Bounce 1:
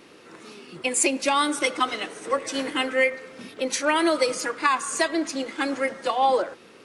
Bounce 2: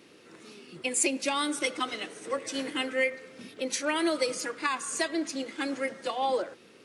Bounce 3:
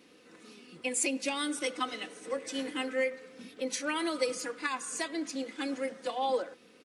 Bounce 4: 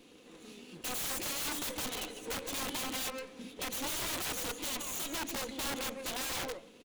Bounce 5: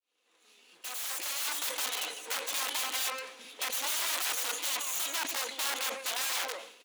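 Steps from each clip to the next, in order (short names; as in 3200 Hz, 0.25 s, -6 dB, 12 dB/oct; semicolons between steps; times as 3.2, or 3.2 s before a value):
HPF 55 Hz; bell 1000 Hz -5.5 dB 1.5 oct; gain -4 dB
comb 4 ms, depth 48%; gain -4.5 dB
minimum comb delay 0.3 ms; echo 0.153 s -12 dB; wrapped overs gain 33.5 dB; gain +2 dB
opening faded in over 1.83 s; HPF 820 Hz 12 dB/oct; sustainer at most 85 dB/s; gain +5 dB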